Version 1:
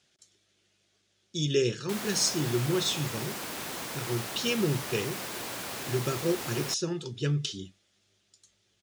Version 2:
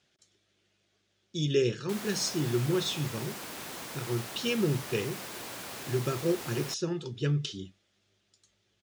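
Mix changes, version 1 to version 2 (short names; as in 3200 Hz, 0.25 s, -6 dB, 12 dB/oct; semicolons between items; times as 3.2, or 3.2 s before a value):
speech: add high shelf 5400 Hz -10 dB; background -4.0 dB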